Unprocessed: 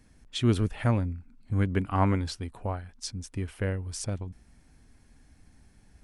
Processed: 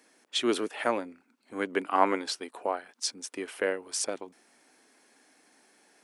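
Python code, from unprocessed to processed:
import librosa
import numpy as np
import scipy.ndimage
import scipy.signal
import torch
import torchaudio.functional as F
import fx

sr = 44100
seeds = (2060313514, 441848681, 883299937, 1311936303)

p1 = scipy.signal.sosfilt(scipy.signal.butter(4, 340.0, 'highpass', fs=sr, output='sos'), x)
p2 = fx.rider(p1, sr, range_db=10, speed_s=2.0)
y = p1 + (p2 * librosa.db_to_amplitude(-3.0))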